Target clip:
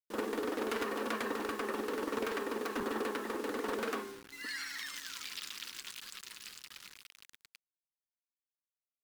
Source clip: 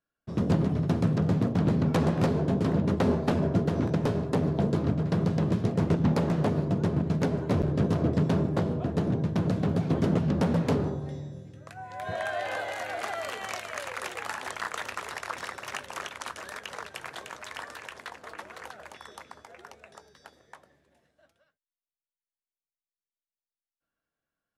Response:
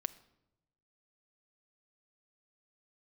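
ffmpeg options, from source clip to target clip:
-af "acrusher=bits=6:mix=0:aa=0.000001,equalizer=f=240:w=2.3:g=-11.5,asetrate=119952,aresample=44100,volume=0.398"

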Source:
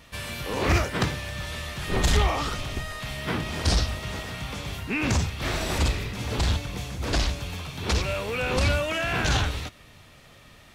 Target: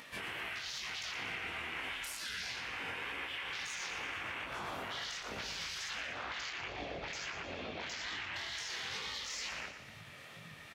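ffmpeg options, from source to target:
-filter_complex "[0:a]asettb=1/sr,asplit=3[s0][s1][s2];[s0]atrim=end=5.894[s3];[s1]atrim=start=5.89:end=8.36,asetpts=PTS-STARTPTS,afade=t=in:d=0.004:c=qsin,afade=t=out:st=2.466:d=0.004:c=qsin,lowpass=f=4500:w=0.5412,lowpass=f=4500:w=1.3066[s4];[s2]atrim=start=8.356[s5];[s3][s4]acrossfade=d=0.004:c1=hsin:c2=qsin[s6];[s6][s5]acrossfade=d=0.004:c1=qsin:c2=hsin,afwtdn=0.0158,highpass=230,afftfilt=real='re*lt(hypot(re,im),0.0282)':imag='im*lt(hypot(re,im),0.0282)':win_size=1024:overlap=0.75,equalizer=f=2000:w=1.2:g=6.5,acompressor=threshold=0.00631:ratio=8,alimiter=level_in=5.62:limit=0.0631:level=0:latency=1:release=88,volume=0.178,acompressor=mode=upward:threshold=0.00224:ratio=2.5,flanger=delay=17.5:depth=6.9:speed=2.2,aecho=1:1:117|234|351|468|585|702:0.376|0.195|0.102|0.0528|0.0275|0.0143,volume=3.35"

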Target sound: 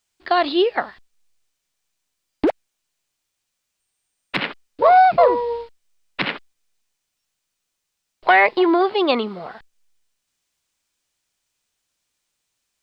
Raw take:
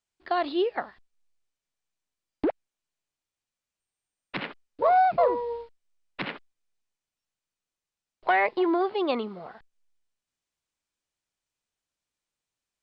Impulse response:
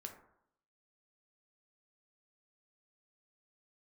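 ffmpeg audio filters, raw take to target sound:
-filter_complex "[0:a]highshelf=f=2000:g=6.5,asettb=1/sr,asplit=3[s0][s1][s2];[s0]atrim=end=2.474[s3];[s1]atrim=start=2.47:end=4.36,asetpts=PTS-STARTPTS,afade=t=in:d=0.004:c=qsin,afade=t=out:st=1.886:d=0.004:c=qsin,asoftclip=type=hard:threshold=0.0891[s4];[s2]atrim=start=4.356[s5];[s3][s4]acrossfade=d=0.004:c1=hsin:c2=qsin[s6];[s6][s5]acrossfade=d=0.004:c1=qsin:c2=hsin,volume=2.37"

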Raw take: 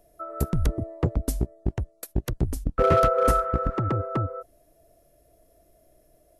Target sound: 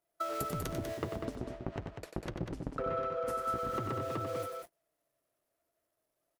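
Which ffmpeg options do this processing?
-filter_complex "[0:a]aeval=exprs='val(0)+0.5*0.0158*sgn(val(0))':c=same,highpass=f=120:p=1,agate=range=0.00794:threshold=0.0158:ratio=16:detection=peak,lowshelf=f=160:g=-5.5,acompressor=threshold=0.02:ratio=12,flanger=delay=5.4:depth=3.9:regen=-46:speed=0.44:shape=triangular,asettb=1/sr,asplit=3[s0][s1][s2];[s0]atrim=end=1.164[s3];[s1]atrim=start=1.16:end=3.27,asetpts=PTS-STARTPTS,afade=t=in:d=0.004:c=qsin,afade=t=out:st=2.106:d=0.004:c=qsin,adynamicsmooth=sensitivity=4:basefreq=3100[s4];[s2]atrim=start=3.266[s5];[s3][s4]acrossfade=d=0.004:c1=hsin:c2=qsin[s6];[s6][s5]acrossfade=d=0.004:c1=qsin:c2=hsin,aecho=1:1:93.29|195.3:0.447|0.501,volume=1.68"

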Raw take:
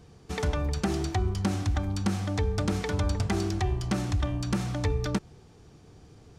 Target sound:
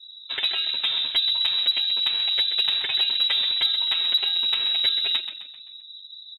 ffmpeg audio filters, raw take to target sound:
-filter_complex "[0:a]afftfilt=real='re*gte(hypot(re,im),0.00501)':imag='im*gte(hypot(re,im),0.00501)':win_size=1024:overlap=0.75,asplit=2[s0][s1];[s1]acompressor=threshold=0.0141:ratio=20,volume=1.19[s2];[s0][s2]amix=inputs=2:normalize=0,aeval=exprs='0.224*(cos(1*acos(clip(val(0)/0.224,-1,1)))-cos(1*PI/2))+0.00398*(cos(6*acos(clip(val(0)/0.224,-1,1)))-cos(6*PI/2))+0.00282*(cos(7*acos(clip(val(0)/0.224,-1,1)))-cos(7*PI/2))':c=same,lowpass=f=3400:t=q:w=0.5098,lowpass=f=3400:t=q:w=0.6013,lowpass=f=3400:t=q:w=0.9,lowpass=f=3400:t=q:w=2.563,afreqshift=-4000,aecho=1:1:7.5:0.94,acontrast=72,asplit=2[s3][s4];[s4]asplit=5[s5][s6][s7][s8][s9];[s5]adelay=130,afreqshift=-43,volume=0.299[s10];[s6]adelay=260,afreqshift=-86,volume=0.132[s11];[s7]adelay=390,afreqshift=-129,volume=0.0575[s12];[s8]adelay=520,afreqshift=-172,volume=0.0254[s13];[s9]adelay=650,afreqshift=-215,volume=0.0112[s14];[s10][s11][s12][s13][s14]amix=inputs=5:normalize=0[s15];[s3][s15]amix=inputs=2:normalize=0,volume=0.501"

